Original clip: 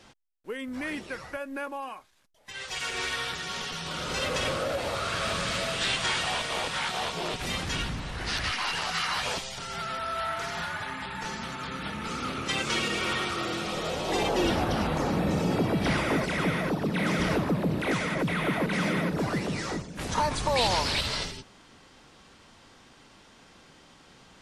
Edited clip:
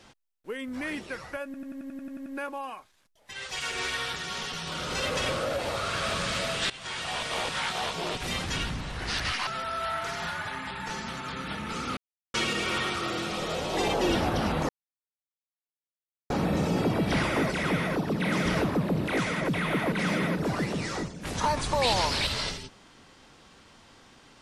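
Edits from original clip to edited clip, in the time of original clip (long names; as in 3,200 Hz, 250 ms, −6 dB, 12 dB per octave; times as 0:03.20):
0:01.45: stutter 0.09 s, 10 plays
0:05.89–0:06.53: fade in, from −20 dB
0:08.66–0:09.82: remove
0:12.32–0:12.69: silence
0:15.04: splice in silence 1.61 s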